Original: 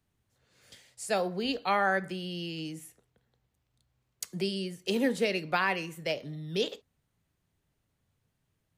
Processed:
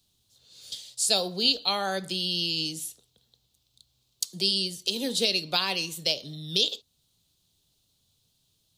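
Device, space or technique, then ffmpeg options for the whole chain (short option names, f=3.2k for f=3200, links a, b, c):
over-bright horn tweeter: -af "highshelf=f=2.7k:t=q:w=3:g=12,alimiter=limit=-11dB:level=0:latency=1:release=418,volume=1dB"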